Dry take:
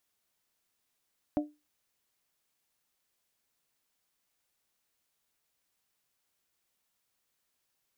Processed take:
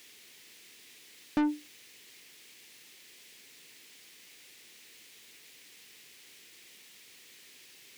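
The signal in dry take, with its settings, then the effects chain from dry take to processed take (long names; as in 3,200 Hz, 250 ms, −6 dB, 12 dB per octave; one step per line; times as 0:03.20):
struck glass bell, lowest mode 298 Hz, modes 3, decay 0.25 s, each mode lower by 5 dB, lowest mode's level −23 dB
flat-topped bell 930 Hz −14.5 dB
mid-hump overdrive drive 41 dB, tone 2,300 Hz, clips at −19 dBFS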